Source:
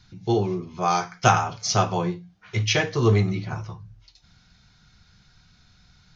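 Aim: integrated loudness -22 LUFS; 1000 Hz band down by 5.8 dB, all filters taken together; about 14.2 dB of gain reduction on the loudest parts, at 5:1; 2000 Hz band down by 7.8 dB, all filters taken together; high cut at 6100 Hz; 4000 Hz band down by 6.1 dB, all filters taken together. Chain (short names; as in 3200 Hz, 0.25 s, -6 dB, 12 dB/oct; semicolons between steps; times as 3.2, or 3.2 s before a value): LPF 6100 Hz; bell 1000 Hz -6.5 dB; bell 2000 Hz -7 dB; bell 4000 Hz -4.5 dB; compressor 5:1, threshold -31 dBFS; gain +13.5 dB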